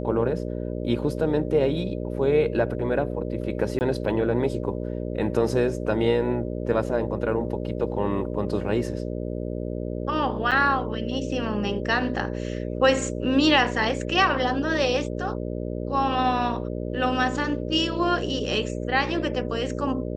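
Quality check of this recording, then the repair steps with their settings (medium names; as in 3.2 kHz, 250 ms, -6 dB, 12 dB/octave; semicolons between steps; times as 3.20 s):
buzz 60 Hz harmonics 10 -30 dBFS
3.79–3.81 s: dropout 19 ms
10.51–10.52 s: dropout 7.3 ms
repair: de-hum 60 Hz, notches 10; interpolate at 3.79 s, 19 ms; interpolate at 10.51 s, 7.3 ms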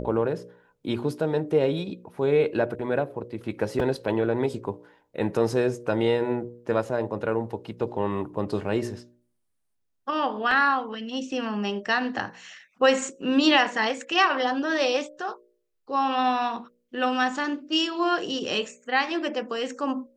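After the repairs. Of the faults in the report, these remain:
nothing left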